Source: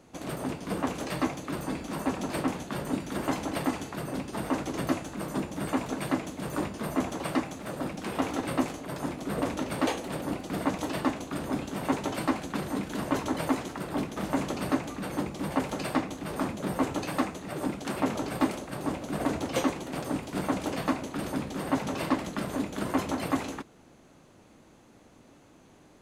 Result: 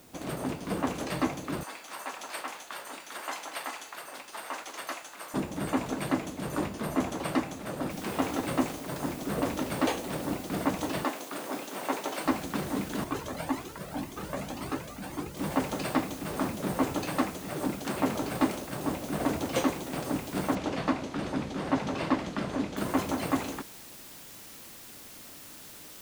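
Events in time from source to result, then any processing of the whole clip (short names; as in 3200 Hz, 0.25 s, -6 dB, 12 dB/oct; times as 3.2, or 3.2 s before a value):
1.63–5.34 HPF 940 Hz
7.9 noise floor step -59 dB -48 dB
11.04–12.26 HPF 390 Hz
13.04–15.37 cascading flanger rising 1.9 Hz
20.55–22.77 LPF 5300 Hz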